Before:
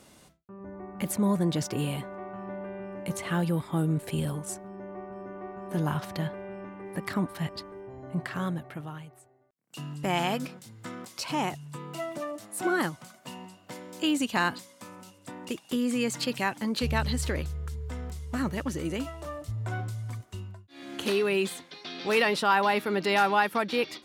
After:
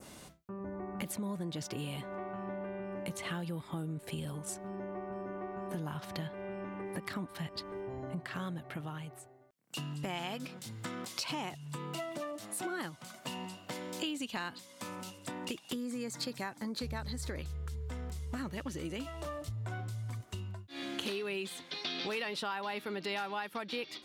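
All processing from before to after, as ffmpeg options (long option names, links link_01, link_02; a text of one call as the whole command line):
ffmpeg -i in.wav -filter_complex "[0:a]asettb=1/sr,asplit=3[link_01][link_02][link_03];[link_01]atrim=end=15.744[link_04];[link_02]atrim=start=15.74:end=17.39,asetpts=PTS-STARTPTS,afade=type=in:duration=0.004:curve=qsin,afade=type=out:start_time=1.646:duration=0.004:curve=qsin,equalizer=frequency=2900:width_type=o:width=0.54:gain=-12,bandreject=frequency=2900:width=27[link_05];[link_03]atrim=start=17.386[link_06];[link_04][link_05]acrossfade=duration=0.004:curve1=hsin:curve2=qsin[link_07];[link_07][link_06]acrossfade=duration=0.004:curve1=qsin:curve2=hsin,acompressor=threshold=-42dB:ratio=5,adynamicequalizer=threshold=0.00126:dfrequency=3500:dqfactor=1.1:tfrequency=3500:tqfactor=1.1:attack=5:release=100:ratio=0.375:range=2.5:mode=boostabove:tftype=bell,volume=4dB" out.wav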